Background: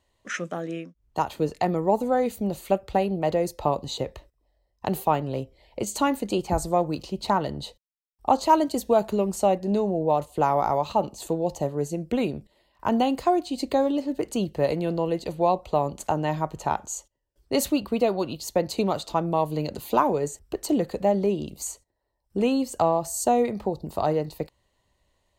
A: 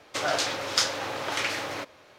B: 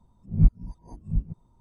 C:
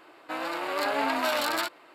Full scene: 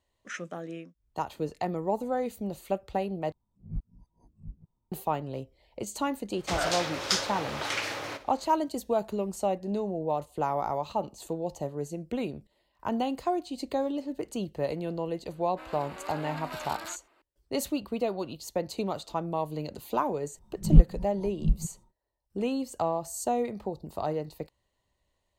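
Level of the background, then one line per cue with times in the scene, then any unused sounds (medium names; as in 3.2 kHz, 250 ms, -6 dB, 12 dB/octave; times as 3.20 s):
background -7 dB
3.32 s: replace with B -17.5 dB
6.33 s: add A -3 dB + flutter echo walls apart 10.1 m, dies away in 0.26 s
15.28 s: add C -12.5 dB
20.33 s: add B -0.5 dB, fades 0.10 s + comb 5.5 ms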